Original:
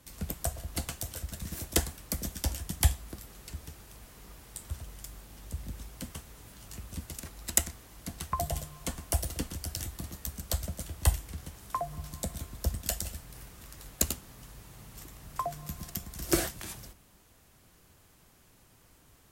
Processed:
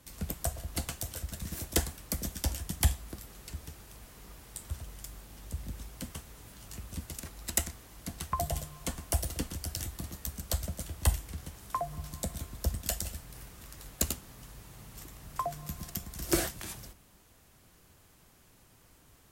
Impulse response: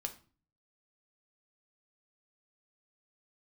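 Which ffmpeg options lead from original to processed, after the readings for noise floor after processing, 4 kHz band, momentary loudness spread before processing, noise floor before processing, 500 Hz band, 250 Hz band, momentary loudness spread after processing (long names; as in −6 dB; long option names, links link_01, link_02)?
−61 dBFS, −1.0 dB, 19 LU, −61 dBFS, −0.5 dB, −0.5 dB, 17 LU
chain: -af "asoftclip=type=tanh:threshold=-14dB"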